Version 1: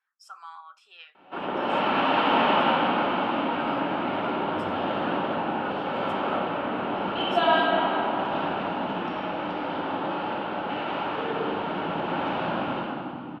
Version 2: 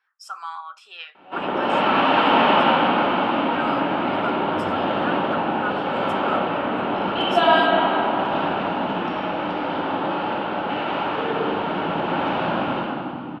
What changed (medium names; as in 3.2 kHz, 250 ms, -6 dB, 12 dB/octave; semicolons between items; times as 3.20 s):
speech +10.0 dB; background +5.0 dB